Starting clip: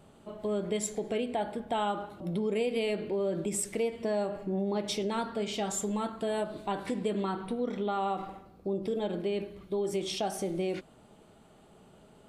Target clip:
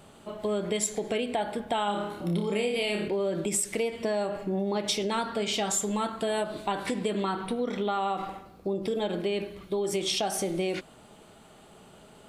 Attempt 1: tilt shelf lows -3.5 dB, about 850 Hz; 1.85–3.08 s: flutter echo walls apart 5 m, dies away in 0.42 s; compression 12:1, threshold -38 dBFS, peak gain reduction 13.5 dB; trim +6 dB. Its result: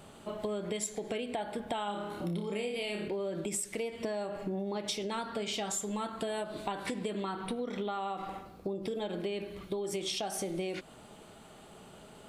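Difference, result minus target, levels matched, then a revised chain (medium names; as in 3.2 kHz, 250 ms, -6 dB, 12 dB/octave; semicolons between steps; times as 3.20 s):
compression: peak gain reduction +7.5 dB
tilt shelf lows -3.5 dB, about 850 Hz; 1.85–3.08 s: flutter echo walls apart 5 m, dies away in 0.42 s; compression 12:1, threshold -30 dBFS, peak gain reduction 6 dB; trim +6 dB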